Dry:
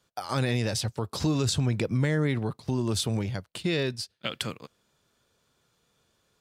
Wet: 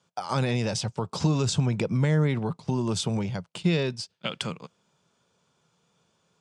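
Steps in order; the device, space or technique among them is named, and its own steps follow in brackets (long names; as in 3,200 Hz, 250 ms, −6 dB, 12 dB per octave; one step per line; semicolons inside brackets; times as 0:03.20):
car door speaker (loudspeaker in its box 110–8,200 Hz, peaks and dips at 170 Hz +8 dB, 300 Hz −4 dB, 910 Hz +4 dB, 1,800 Hz −5 dB, 4,100 Hz −5 dB)
level +1.5 dB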